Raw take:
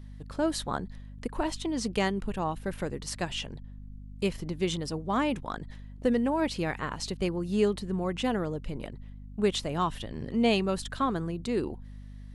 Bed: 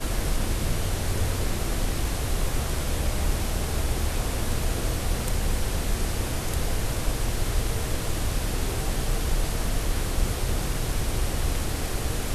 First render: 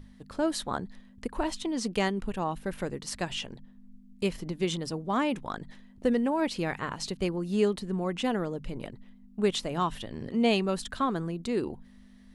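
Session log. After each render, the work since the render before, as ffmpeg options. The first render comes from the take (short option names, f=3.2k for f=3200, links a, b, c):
-af "bandreject=f=50:t=h:w=6,bandreject=f=100:t=h:w=6,bandreject=f=150:t=h:w=6"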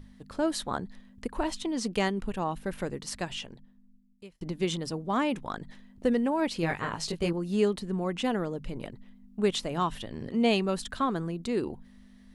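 -filter_complex "[0:a]asettb=1/sr,asplit=3[a][b][c];[a]atrim=end=6.614[d];[b]atrim=start=6.61:end=7.33,asetpts=PTS-STARTPTS,afade=t=in:d=0.004:c=qsin,afade=t=out:st=0.716:d=0.004:c=qsin,asplit=2[e][f];[f]adelay=18,volume=-3dB[g];[e][g]amix=inputs=2:normalize=0,atrim=end_sample=31752[h];[c]atrim=start=7.326[i];[d][h]acrossfade=d=0.004:c1=hsin:c2=qsin[j];[j][i]acrossfade=d=0.004:c1=qsin:c2=hsin,asplit=2[k][l];[k]atrim=end=4.41,asetpts=PTS-STARTPTS,afade=t=out:st=3.02:d=1.39[m];[l]atrim=start=4.41,asetpts=PTS-STARTPTS,afade=t=in:d=0.004:c=hsin[n];[m][n]concat=n=2:v=0:a=1"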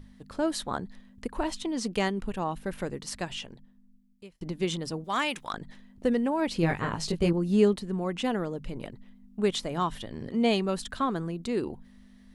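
-filter_complex "[0:a]asettb=1/sr,asplit=3[a][b][c];[a]atrim=end=5.044[d];[b]atrim=start=5.04:end=5.53,asetpts=PTS-STARTPTS,afade=t=in:d=0.004:c=qsin,afade=t=out:st=0.486:d=0.004:c=qsin,tiltshelf=f=930:g=-9.5[e];[c]atrim=start=5.526[f];[d][e]acrossfade=d=0.004:c1=hsin:c2=qsin[g];[g][f]acrossfade=d=0.004:c1=qsin:c2=hsin,asettb=1/sr,asplit=3[h][i][j];[h]atrim=end=6.484[k];[i]atrim=start=6.48:end=7.74,asetpts=PTS-STARTPTS,afade=t=in:d=0.004:c=qsin,afade=t=out:st=1.256:d=0.004:c=qsin,lowshelf=f=400:g=6.5[l];[j]atrim=start=7.736[m];[k][l]acrossfade=d=0.004:c1=hsin:c2=qsin[n];[n][m]acrossfade=d=0.004:c1=qsin:c2=hsin,asettb=1/sr,asplit=3[o][p][q];[o]atrim=end=9.504[r];[p]atrim=start=9.5:end=10.63,asetpts=PTS-STARTPTS,afade=t=in:d=0.004:c=qsin,afade=t=out:st=1.126:d=0.004:c=qsin,bandreject=f=2.7k:w=13[s];[q]atrim=start=10.626[t];[r][s]acrossfade=d=0.004:c1=hsin:c2=qsin[u];[u][t]acrossfade=d=0.004:c1=qsin:c2=hsin"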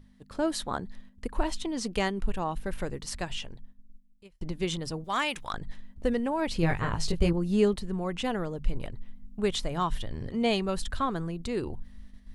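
-af "asubboost=boost=5:cutoff=95,agate=range=-6dB:threshold=-45dB:ratio=16:detection=peak"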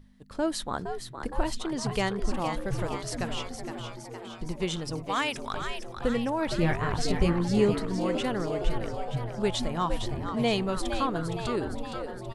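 -filter_complex "[0:a]asplit=9[a][b][c][d][e][f][g][h][i];[b]adelay=464,afreqshift=110,volume=-8dB[j];[c]adelay=928,afreqshift=220,volume=-12.2dB[k];[d]adelay=1392,afreqshift=330,volume=-16.3dB[l];[e]adelay=1856,afreqshift=440,volume=-20.5dB[m];[f]adelay=2320,afreqshift=550,volume=-24.6dB[n];[g]adelay=2784,afreqshift=660,volume=-28.8dB[o];[h]adelay=3248,afreqshift=770,volume=-32.9dB[p];[i]adelay=3712,afreqshift=880,volume=-37.1dB[q];[a][j][k][l][m][n][o][p][q]amix=inputs=9:normalize=0"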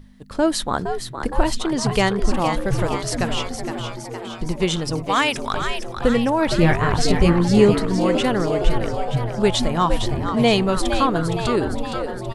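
-af "volume=9.5dB,alimiter=limit=-3dB:level=0:latency=1"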